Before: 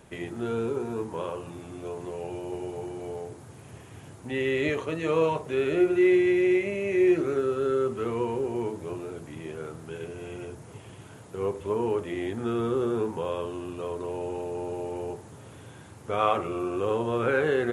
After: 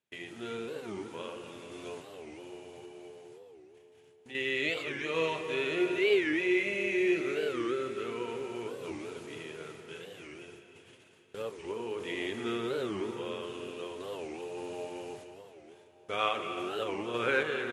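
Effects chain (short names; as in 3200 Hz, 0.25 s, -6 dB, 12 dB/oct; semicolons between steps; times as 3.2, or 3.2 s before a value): weighting filter D; gate -43 dBFS, range -27 dB; 2.02–4.35 compressor 1.5:1, threshold -48 dBFS, peak gain reduction 8 dB; random-step tremolo; feedback echo 0.299 s, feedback 49%, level -14 dB; reverb RT60 3.9 s, pre-delay 0.1 s, DRR 8 dB; record warp 45 rpm, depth 250 cents; gain -5.5 dB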